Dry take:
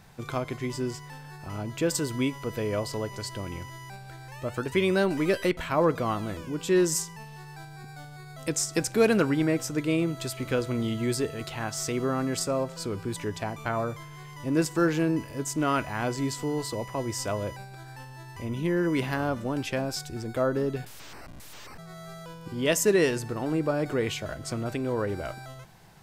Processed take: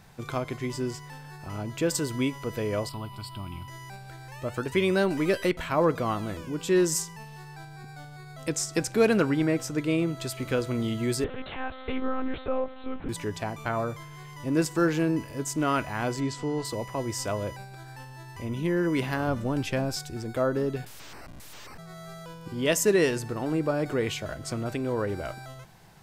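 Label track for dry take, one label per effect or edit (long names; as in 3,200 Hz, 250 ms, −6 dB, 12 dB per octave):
2.890000	3.680000	phaser with its sweep stopped centre 1,800 Hz, stages 6
7.480000	10.290000	high-shelf EQ 6,900 Hz −4 dB
11.240000	13.090000	one-pitch LPC vocoder at 8 kHz 260 Hz
16.200000	16.650000	high-frequency loss of the air 65 metres
19.270000	19.960000	low-shelf EQ 130 Hz +8.5 dB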